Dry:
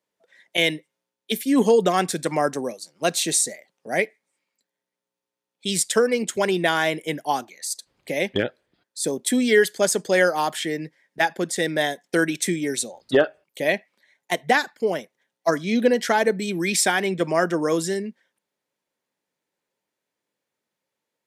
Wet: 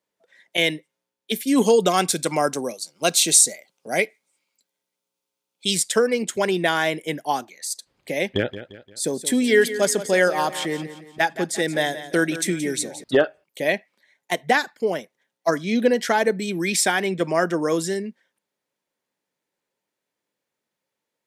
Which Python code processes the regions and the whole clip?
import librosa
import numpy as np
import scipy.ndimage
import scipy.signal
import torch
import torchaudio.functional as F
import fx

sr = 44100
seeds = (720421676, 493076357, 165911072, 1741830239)

y = fx.chain(x, sr, fx.high_shelf(hz=2100.0, db=7.0),
    fx.notch(hz=1800.0, q=5.6), at=(1.47, 5.75))
y = fx.chain(y, sr, fx.peak_eq(hz=82.0, db=6.5, octaves=0.9),
    fx.echo_feedback(ms=174, feedback_pct=42, wet_db=-13), at=(8.29, 13.04))